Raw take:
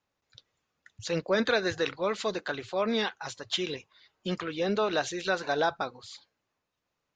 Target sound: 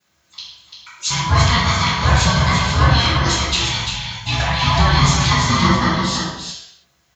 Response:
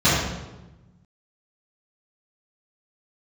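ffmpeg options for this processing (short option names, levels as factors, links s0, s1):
-filter_complex "[0:a]highpass=570,aemphasis=mode=production:type=75kf,acompressor=threshold=0.0282:ratio=6,aeval=exprs='val(0)*sin(2*PI*480*n/s)':c=same,aecho=1:1:343:0.501[s0];[1:a]atrim=start_sample=2205,afade=t=out:st=0.39:d=0.01,atrim=end_sample=17640[s1];[s0][s1]afir=irnorm=-1:irlink=0,volume=0.891"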